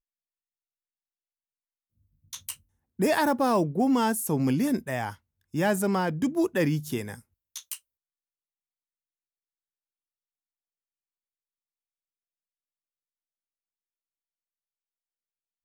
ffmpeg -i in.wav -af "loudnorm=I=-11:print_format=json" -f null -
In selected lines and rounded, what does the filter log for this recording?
"input_i" : "-26.2",
"input_tp" : "-13.2",
"input_lra" : "19.5",
"input_thresh" : "-37.7",